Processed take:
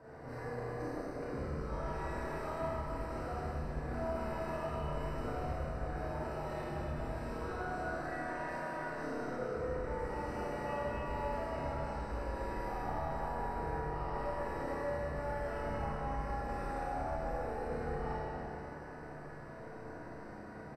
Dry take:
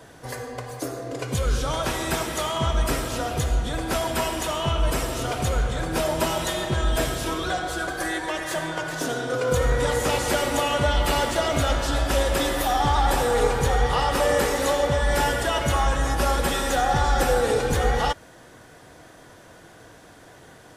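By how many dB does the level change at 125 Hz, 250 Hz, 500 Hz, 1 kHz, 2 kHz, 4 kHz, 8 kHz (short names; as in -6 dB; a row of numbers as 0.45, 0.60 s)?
-14.5, -12.5, -14.0, -14.0, -16.5, -29.5, -31.5 dB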